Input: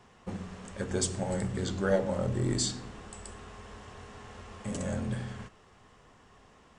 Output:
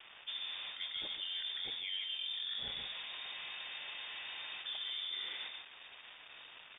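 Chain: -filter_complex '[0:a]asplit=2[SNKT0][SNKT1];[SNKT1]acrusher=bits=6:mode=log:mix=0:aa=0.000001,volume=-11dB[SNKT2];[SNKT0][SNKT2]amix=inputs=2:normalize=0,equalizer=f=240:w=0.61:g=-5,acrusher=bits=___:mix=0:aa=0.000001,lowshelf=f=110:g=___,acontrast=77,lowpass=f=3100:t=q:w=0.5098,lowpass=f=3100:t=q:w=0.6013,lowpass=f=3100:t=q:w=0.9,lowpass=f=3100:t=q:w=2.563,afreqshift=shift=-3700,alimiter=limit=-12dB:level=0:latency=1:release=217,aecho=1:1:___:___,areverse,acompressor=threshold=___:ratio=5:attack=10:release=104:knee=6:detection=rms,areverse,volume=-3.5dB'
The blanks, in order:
8, -3.5, 145, 0.398, -36dB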